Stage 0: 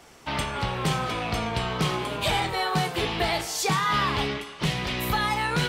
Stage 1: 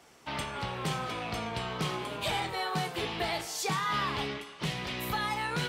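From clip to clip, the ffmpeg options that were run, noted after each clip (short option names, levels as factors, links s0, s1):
-af "highpass=f=97:p=1,volume=0.473"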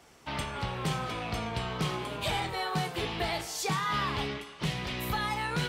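-af "lowshelf=f=94:g=9.5"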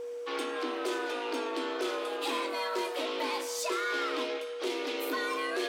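-af "asoftclip=type=tanh:threshold=0.0447,afreqshift=210,aeval=exprs='val(0)+0.0158*sin(2*PI*480*n/s)':c=same"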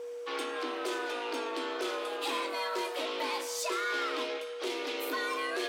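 -af "highpass=f=340:p=1"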